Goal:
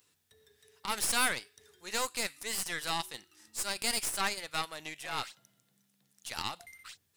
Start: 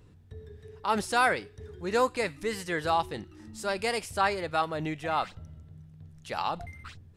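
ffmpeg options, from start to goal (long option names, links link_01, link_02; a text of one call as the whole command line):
ffmpeg -i in.wav -filter_complex "[0:a]aderivative,asettb=1/sr,asplit=3[link_01][link_02][link_03];[link_01]atrim=end=5.054[link_04];[link_02]atrim=start=5.05:end=6.43,asetpts=PTS-STARTPTS,afade=type=in:duration=0.004:curve=qsin,afade=type=out:start_time=1.376:duration=0.004:curve=qsin,afreqshift=44[link_05];[link_03]atrim=start=6.426[link_06];[link_04][link_05]acrossfade=duration=0.004:curve1=hsin:curve2=qsin[link_07];[link_07][link_06]acrossfade=duration=0.004:curve1=qsin:curve2=hsin,aeval=exprs='0.0631*(cos(1*acos(clip(val(0)/0.0631,-1,1)))-cos(1*PI/2))+0.01*(cos(4*acos(clip(val(0)/0.0631,-1,1)))-cos(4*PI/2))+0.00316*(cos(8*acos(clip(val(0)/0.0631,-1,1)))-cos(8*PI/2))':channel_layout=same,volume=7.5dB" out.wav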